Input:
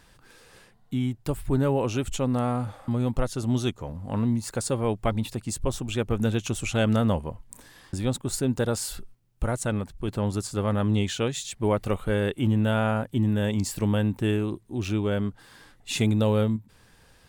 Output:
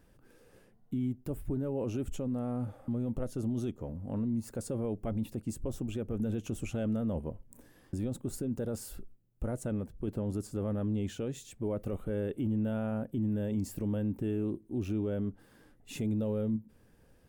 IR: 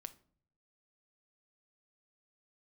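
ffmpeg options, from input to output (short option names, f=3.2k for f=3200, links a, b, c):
-filter_complex "[0:a]equalizer=f=250:t=o:w=1:g=4,equalizer=f=500:t=o:w=1:g=3,equalizer=f=1k:t=o:w=1:g=-7,equalizer=f=2k:t=o:w=1:g=-5,equalizer=f=4k:t=o:w=1:g=-11,equalizer=f=8k:t=o:w=1:g=-7,alimiter=limit=-20.5dB:level=0:latency=1:release=18,asplit=2[a][b];[1:a]atrim=start_sample=2205,asetrate=83790,aresample=44100[c];[b][c]afir=irnorm=-1:irlink=0,volume=0dB[d];[a][d]amix=inputs=2:normalize=0,volume=-7.5dB"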